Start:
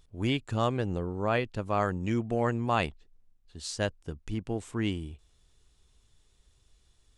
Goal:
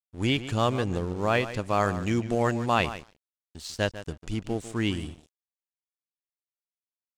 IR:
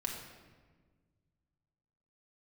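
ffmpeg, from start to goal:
-filter_complex "[0:a]acrossover=split=3900[a][b];[b]acompressor=threshold=-51dB:ratio=4:attack=1:release=60[c];[a][c]amix=inputs=2:normalize=0,asplit=2[d][e];[e]adelay=147,lowpass=f=3.8k:p=1,volume=-12dB,asplit=2[f][g];[g]adelay=147,lowpass=f=3.8k:p=1,volume=0.16[h];[f][h]amix=inputs=2:normalize=0[i];[d][i]amix=inputs=2:normalize=0,aeval=exprs='sgn(val(0))*max(abs(val(0))-0.00299,0)':c=same,equalizer=f=7k:w=0.54:g=9.5,volume=3dB"

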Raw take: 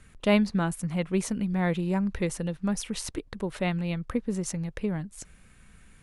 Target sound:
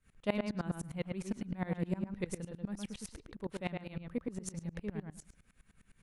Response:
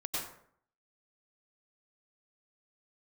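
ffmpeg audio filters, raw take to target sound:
-filter_complex "[0:a]asplit=2[a][b];[b]adelay=113,lowpass=f=2.9k:p=1,volume=-3.5dB,asplit=2[c][d];[d]adelay=113,lowpass=f=2.9k:p=1,volume=0.17,asplit=2[e][f];[f]adelay=113,lowpass=f=2.9k:p=1,volume=0.17[g];[c][e][g]amix=inputs=3:normalize=0[h];[a][h]amix=inputs=2:normalize=0,aeval=exprs='val(0)*pow(10,-23*if(lt(mod(-9.8*n/s,1),2*abs(-9.8)/1000),1-mod(-9.8*n/s,1)/(2*abs(-9.8)/1000),(mod(-9.8*n/s,1)-2*abs(-9.8)/1000)/(1-2*abs(-9.8)/1000))/20)':c=same,volume=-5dB"

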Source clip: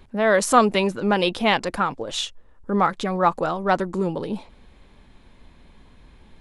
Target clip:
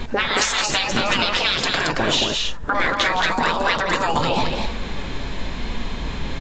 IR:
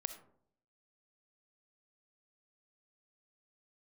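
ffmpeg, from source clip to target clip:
-filter_complex "[0:a]asettb=1/sr,asplit=3[a][b][c];[a]atrim=end=1.814[d];[b]atrim=start=1.81:end=4.11,asetpts=PTS-STARTPTS,afade=t=in:d=0.004:c=qsin,afade=t=out:st=2.296:d=0.004:c=qsin,acrossover=split=4000[e][f];[f]acompressor=threshold=-44dB:ratio=4:attack=1:release=60[g];[e][g]amix=inputs=2:normalize=0[h];[c]atrim=start=4.106[i];[d][h]acrossfade=d=0.004:c1=hsin:c2=qsin[j];[j][i]acrossfade=d=0.004:c1=qsin:c2=hsin,afftfilt=real='re*lt(hypot(re,im),0.141)':imag='im*lt(hypot(re,im),0.141)':win_size=1024:overlap=0.75,highshelf=f=2.5k:g=4.5,acompressor=threshold=-38dB:ratio=16,aeval=exprs='val(0)+0.000631*(sin(2*PI*50*n/s)+sin(2*PI*2*50*n/s)/2+sin(2*PI*3*50*n/s)/3+sin(2*PI*4*50*n/s)/4+sin(2*PI*5*50*n/s)/5)':c=same,apsyclip=25.5dB,flanger=delay=4.1:depth=3.5:regen=67:speed=0.87:shape=sinusoidal,asoftclip=type=tanh:threshold=-3dB,aecho=1:1:166.2|224.5:0.282|0.631" -ar 16000 -c:a aac -b:a 32k

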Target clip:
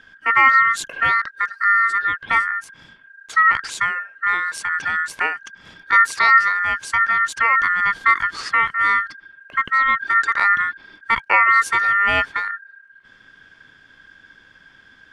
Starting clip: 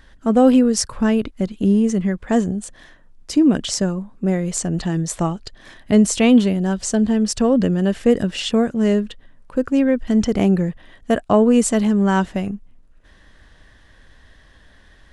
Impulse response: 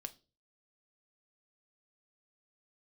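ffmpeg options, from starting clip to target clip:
-af "aemphasis=mode=reproduction:type=50kf,aeval=exprs='val(0)*sin(2*PI*1600*n/s)':c=same,volume=2dB"

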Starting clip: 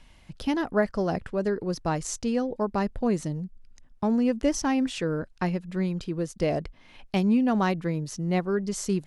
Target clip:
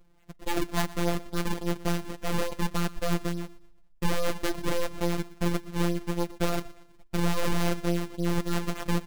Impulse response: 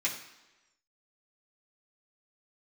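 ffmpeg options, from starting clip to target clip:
-af "acrusher=samples=39:mix=1:aa=0.000001:lfo=1:lforange=62.4:lforate=3.5,aeval=exprs='0.266*(cos(1*acos(clip(val(0)/0.266,-1,1)))-cos(1*PI/2))+0.0188*(cos(6*acos(clip(val(0)/0.266,-1,1)))-cos(6*PI/2))+0.015*(cos(7*acos(clip(val(0)/0.266,-1,1)))-cos(7*PI/2))+0.0596*(cos(8*acos(clip(val(0)/0.266,-1,1)))-cos(8*PI/2))':c=same,afftfilt=real='hypot(re,im)*cos(PI*b)':imag='0':win_size=1024:overlap=0.75,aecho=1:1:119|238|357:0.112|0.0404|0.0145"

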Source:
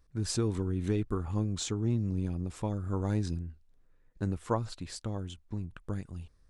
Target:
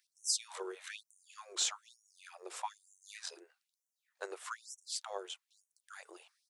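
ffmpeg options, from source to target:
-filter_complex "[0:a]highpass=f=220:w=0.5412,highpass=f=220:w=1.3066,acrossover=split=450|1500[a][b][c];[a]acompressor=threshold=-45dB:ratio=6[d];[d][b][c]amix=inputs=3:normalize=0,asplit=2[e][f];[f]asetrate=35002,aresample=44100,atempo=1.25992,volume=-17dB[g];[e][g]amix=inputs=2:normalize=0,afftfilt=real='re*gte(b*sr/1024,330*pow(5700/330,0.5+0.5*sin(2*PI*1.1*pts/sr)))':imag='im*gte(b*sr/1024,330*pow(5700/330,0.5+0.5*sin(2*PI*1.1*pts/sr)))':win_size=1024:overlap=0.75,volume=4dB"

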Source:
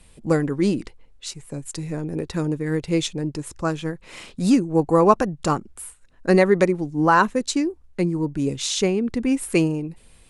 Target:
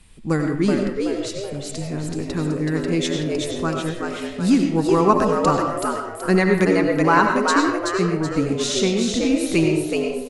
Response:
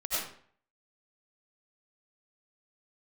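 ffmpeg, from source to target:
-filter_complex "[0:a]equalizer=f=570:t=o:w=0.69:g=-9,asplit=6[a][b][c][d][e][f];[b]adelay=377,afreqshift=99,volume=-4dB[g];[c]adelay=754,afreqshift=198,volume=-12dB[h];[d]adelay=1131,afreqshift=297,volume=-19.9dB[i];[e]adelay=1508,afreqshift=396,volume=-27.9dB[j];[f]adelay=1885,afreqshift=495,volume=-35.8dB[k];[a][g][h][i][j][k]amix=inputs=6:normalize=0,asplit=2[l][m];[1:a]atrim=start_sample=2205,lowpass=6.9k[n];[m][n]afir=irnorm=-1:irlink=0,volume=-8.5dB[o];[l][o]amix=inputs=2:normalize=0,volume=-1dB"

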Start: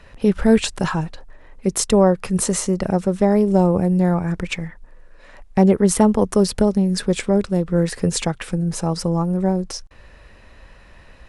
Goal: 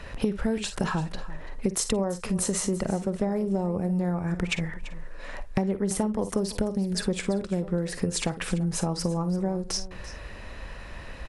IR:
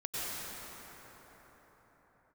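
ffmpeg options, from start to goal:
-filter_complex "[0:a]asplit=2[a][b];[b]aecho=0:1:46|56:0.158|0.15[c];[a][c]amix=inputs=2:normalize=0,acompressor=threshold=-29dB:ratio=10,asplit=2[d][e];[e]aecho=0:1:338:0.15[f];[d][f]amix=inputs=2:normalize=0,volume=5.5dB"

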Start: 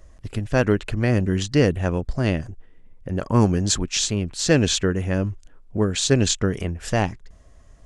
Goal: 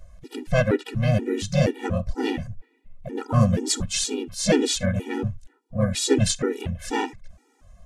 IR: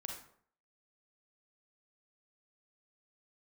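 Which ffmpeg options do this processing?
-filter_complex "[0:a]asplit=2[a][b];[1:a]atrim=start_sample=2205,atrim=end_sample=3528[c];[b][c]afir=irnorm=-1:irlink=0,volume=-14dB[d];[a][d]amix=inputs=2:normalize=0,asplit=3[e][f][g];[f]asetrate=52444,aresample=44100,atempo=0.840896,volume=-9dB[h];[g]asetrate=55563,aresample=44100,atempo=0.793701,volume=-5dB[i];[e][h][i]amix=inputs=3:normalize=0,afftfilt=real='re*gt(sin(2*PI*2.1*pts/sr)*(1-2*mod(floor(b*sr/1024/250),2)),0)':imag='im*gt(sin(2*PI*2.1*pts/sr)*(1-2*mod(floor(b*sr/1024/250),2)),0)':win_size=1024:overlap=0.75,volume=-1.5dB"

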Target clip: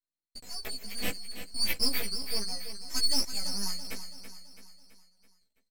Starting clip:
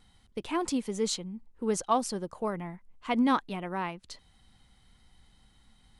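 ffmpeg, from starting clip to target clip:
-filter_complex "[0:a]afftfilt=real='real(if(lt(b,736),b+184*(1-2*mod(floor(b/184),2)),b),0)':imag='imag(if(lt(b,736),b+184*(1-2*mod(floor(b/184),2)),b),0)':win_size=2048:overlap=0.75,agate=range=-31dB:threshold=-54dB:ratio=16:detection=peak,equalizer=f=125:t=o:w=1:g=10,equalizer=f=250:t=o:w=1:g=3,equalizer=f=500:t=o:w=1:g=9,equalizer=f=1k:t=o:w=1:g=-10,equalizer=f=2k:t=o:w=1:g=7,equalizer=f=4k:t=o:w=1:g=-11,equalizer=f=8k:t=o:w=1:g=-6,acrossover=split=1800[a][b];[b]dynaudnorm=f=230:g=11:m=12dB[c];[a][c]amix=inputs=2:normalize=0,aeval=exprs='(tanh(5.62*val(0)+0.4)-tanh(0.4))/5.62':c=same,aeval=exprs='max(val(0),0)':c=same,flanger=delay=3.1:depth=1.9:regen=6:speed=0.62:shape=triangular,asetrate=46305,aresample=44100,asplit=2[d][e];[e]adelay=15,volume=-2dB[f];[d][f]amix=inputs=2:normalize=0,asplit=2[g][h];[h]aecho=0:1:331|662|993|1324|1655:0.299|0.149|0.0746|0.0373|0.0187[i];[g][i]amix=inputs=2:normalize=0,volume=4.5dB"

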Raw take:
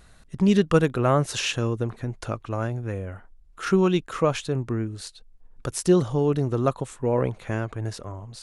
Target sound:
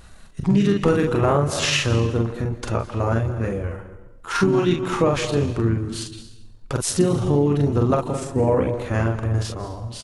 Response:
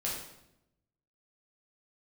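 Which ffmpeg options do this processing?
-filter_complex "[0:a]asplit=2[a][b];[1:a]atrim=start_sample=2205,adelay=137[c];[b][c]afir=irnorm=-1:irlink=0,volume=-17dB[d];[a][d]amix=inputs=2:normalize=0,asplit=3[e][f][g];[f]asetrate=29433,aresample=44100,atempo=1.49831,volume=-11dB[h];[g]asetrate=33038,aresample=44100,atempo=1.33484,volume=-9dB[i];[e][h][i]amix=inputs=3:normalize=0,asplit=2[j][k];[k]adelay=35,volume=-3.5dB[l];[j][l]amix=inputs=2:normalize=0,acompressor=threshold=-18dB:ratio=6,atempo=0.84,volume=4dB"

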